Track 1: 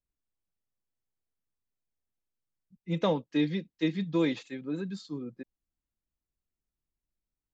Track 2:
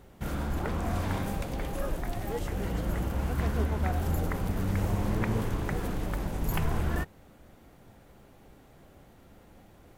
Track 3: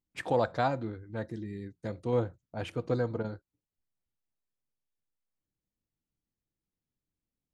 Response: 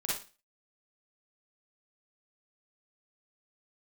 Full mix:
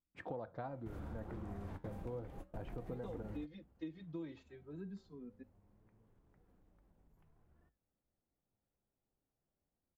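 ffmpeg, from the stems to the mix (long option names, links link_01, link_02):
-filter_complex "[0:a]asplit=2[link_01][link_02];[link_02]adelay=2.6,afreqshift=0.42[link_03];[link_01][link_03]amix=inputs=2:normalize=1,volume=-5.5dB[link_04];[1:a]acompressor=threshold=-31dB:ratio=5,adelay=650,volume=-4.5dB[link_05];[2:a]aemphasis=mode=reproduction:type=75kf,volume=-1dB,asplit=2[link_06][link_07];[link_07]apad=whole_len=468379[link_08];[link_05][link_08]sidechaingate=range=-26dB:threshold=-51dB:ratio=16:detection=peak[link_09];[link_04][link_09][link_06]amix=inputs=3:normalize=0,highshelf=frequency=2000:gain=-11,flanger=delay=3.6:depth=8.1:regen=-82:speed=0.3:shape=sinusoidal,acompressor=threshold=-41dB:ratio=6"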